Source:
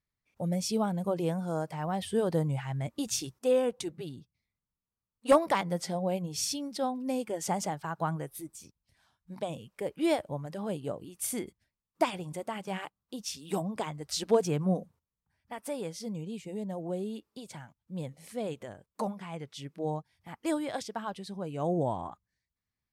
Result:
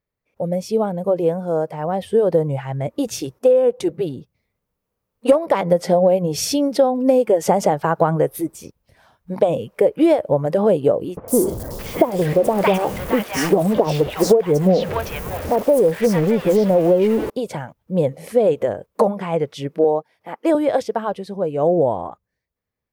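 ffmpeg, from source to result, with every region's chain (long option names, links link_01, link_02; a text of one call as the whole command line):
ffmpeg -i in.wav -filter_complex "[0:a]asettb=1/sr,asplit=3[link_01][link_02][link_03];[link_01]atrim=end=11.174[link_04];[link_02]atrim=start=11.17:end=17.3,asetpts=PTS-STARTPTS,afade=type=in:duration=0.004:curve=qsin,afade=type=out:start_time=6.126:duration=0.004:curve=qsin,aeval=exprs='val(0)+0.5*0.015*sgn(val(0))':channel_layout=same,acrossover=split=1100|4600[link_05][link_06][link_07];[link_07]adelay=110[link_08];[link_06]adelay=620[link_09];[link_05][link_09][link_08]amix=inputs=3:normalize=0,atrim=end_sample=270333[link_10];[link_03]atrim=start=17.296[link_11];[link_04][link_10]acrossfade=duration=0.004:curve1=hsin:curve2=qsin[link_12];[link_12][link_11]acrossfade=duration=0.004:curve1=qsin:curve2=hsin,asettb=1/sr,asplit=3[link_13][link_14][link_15];[link_13]atrim=end=19.844[link_16];[link_14]atrim=start=19.84:end=20.55,asetpts=PTS-STARTPTS,afade=type=in:duration=0.004:curve=qsin,afade=type=out:start_time=0.706:duration=0.004:curve=qsin,highpass=280,highshelf=frequency=4600:gain=-4.5[link_17];[link_15]atrim=start=20.546[link_18];[link_16][link_17]acrossfade=duration=0.004:curve1=hsin:curve2=qsin[link_19];[link_19][link_18]acrossfade=duration=0.004:curve1=qsin:curve2=hsin,dynaudnorm=framelen=710:gausssize=11:maxgain=12dB,equalizer=frequency=500:width_type=o:width=1:gain=12,equalizer=frequency=4000:width_type=o:width=1:gain=-4,equalizer=frequency=8000:width_type=o:width=1:gain=-7,acompressor=threshold=-15dB:ratio=10,volume=4dB" out.wav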